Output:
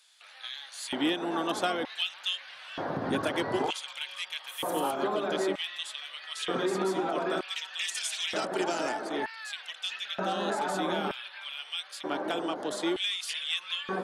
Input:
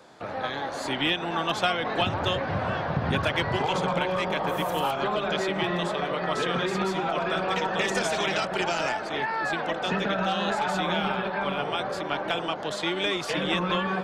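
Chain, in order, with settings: fifteen-band EQ 100 Hz +10 dB, 2500 Hz -5 dB, 10000 Hz +12 dB; LFO high-pass square 0.54 Hz 290–2800 Hz; gain -5 dB

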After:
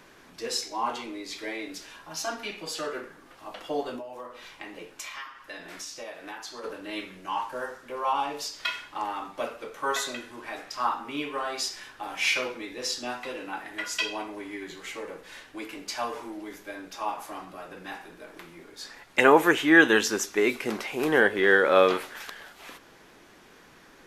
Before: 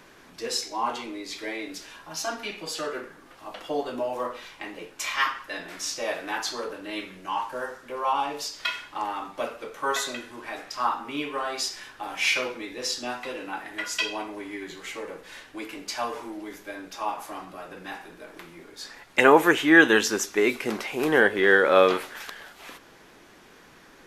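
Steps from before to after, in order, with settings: 3.96–6.64 compressor 12:1, threshold -35 dBFS, peak gain reduction 16.5 dB; gain -1.5 dB

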